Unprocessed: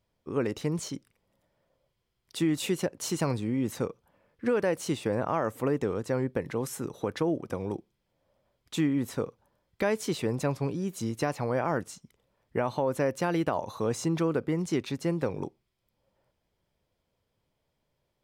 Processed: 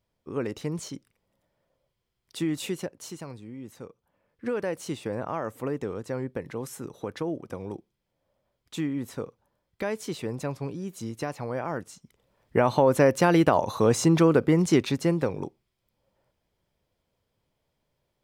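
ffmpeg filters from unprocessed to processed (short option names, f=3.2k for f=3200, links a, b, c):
-af "volume=18.5dB,afade=t=out:st=2.6:d=0.64:silence=0.298538,afade=t=in:st=3.82:d=0.66:silence=0.354813,afade=t=in:st=11.91:d=0.83:silence=0.281838,afade=t=out:st=14.73:d=0.66:silence=0.446684"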